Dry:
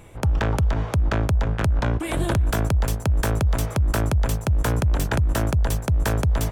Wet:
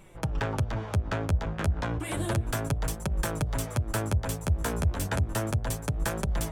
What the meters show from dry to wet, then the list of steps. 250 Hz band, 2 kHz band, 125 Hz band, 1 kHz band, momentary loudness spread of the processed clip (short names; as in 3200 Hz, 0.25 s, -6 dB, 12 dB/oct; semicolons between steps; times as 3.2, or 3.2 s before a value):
-6.0 dB, -5.5 dB, -7.0 dB, -5.5 dB, 3 LU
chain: de-hum 55.82 Hz, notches 14; dynamic EQ 8900 Hz, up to +5 dB, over -48 dBFS, Q 1.5; flange 0.32 Hz, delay 5.1 ms, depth 7.7 ms, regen -1%; gain -2.5 dB